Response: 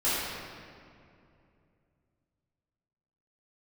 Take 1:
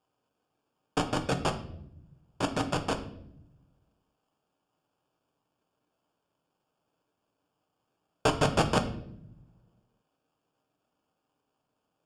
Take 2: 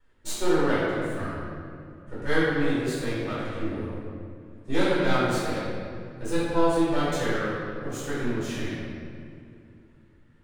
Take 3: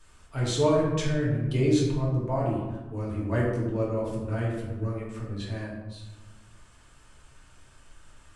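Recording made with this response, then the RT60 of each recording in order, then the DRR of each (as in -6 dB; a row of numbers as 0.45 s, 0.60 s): 2; 0.75 s, 2.5 s, 1.2 s; 5.0 dB, -12.0 dB, -5.5 dB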